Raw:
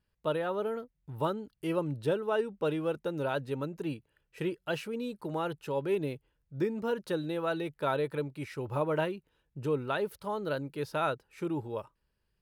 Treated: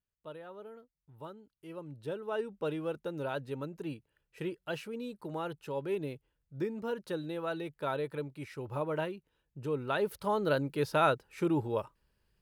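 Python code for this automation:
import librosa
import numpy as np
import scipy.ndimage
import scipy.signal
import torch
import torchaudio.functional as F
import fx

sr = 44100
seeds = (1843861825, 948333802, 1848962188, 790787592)

y = fx.gain(x, sr, db=fx.line((1.66, -15.0), (2.44, -4.0), (9.69, -4.0), (10.2, 4.0)))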